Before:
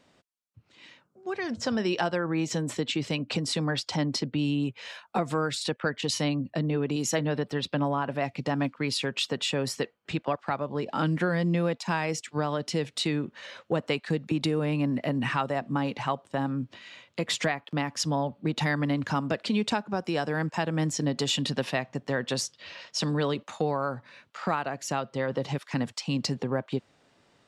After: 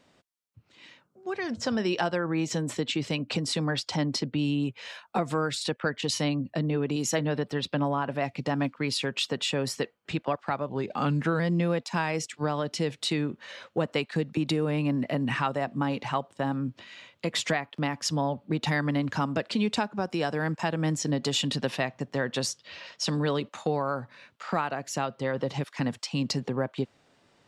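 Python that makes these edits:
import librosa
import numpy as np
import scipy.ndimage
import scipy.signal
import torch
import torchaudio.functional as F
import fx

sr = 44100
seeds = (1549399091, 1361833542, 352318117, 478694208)

y = fx.edit(x, sr, fx.speed_span(start_s=10.69, length_s=0.65, speed=0.92), tone=tone)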